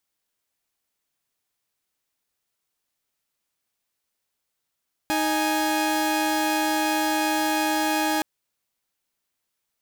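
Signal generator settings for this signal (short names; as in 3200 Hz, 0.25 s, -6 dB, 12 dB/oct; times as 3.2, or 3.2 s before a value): chord D#4/G#5 saw, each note -21.5 dBFS 3.12 s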